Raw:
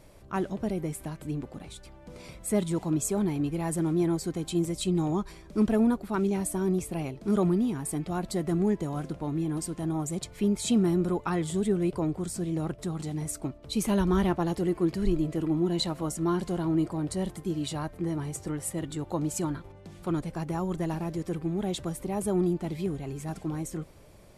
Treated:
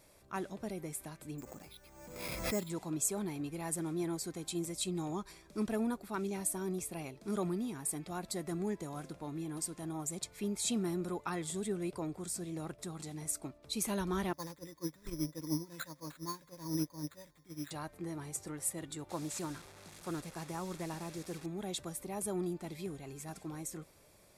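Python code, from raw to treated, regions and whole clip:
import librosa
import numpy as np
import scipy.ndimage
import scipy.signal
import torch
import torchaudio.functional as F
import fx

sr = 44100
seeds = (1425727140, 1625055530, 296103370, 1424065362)

y = fx.chain(x, sr, fx.resample_bad(factor=6, down='filtered', up='hold'),
    fx.pre_swell(db_per_s=39.0), at=(1.38, 2.7))
y = fx.chain(y, sr, fx.ripple_eq(per_octave=1.1, db=15),
    fx.resample_bad(factor=8, down='none', up='hold'),
    fx.upward_expand(threshold_db=-31.0, expansion=2.5), at=(14.33, 17.71))
y = fx.chain(y, sr, fx.delta_mod(bps=64000, step_db=-40.0),
    fx.doppler_dist(depth_ms=0.11), at=(19.09, 21.46))
y = fx.tilt_eq(y, sr, slope=2.0)
y = fx.notch(y, sr, hz=3000.0, q=11.0)
y = y * 10.0 ** (-7.0 / 20.0)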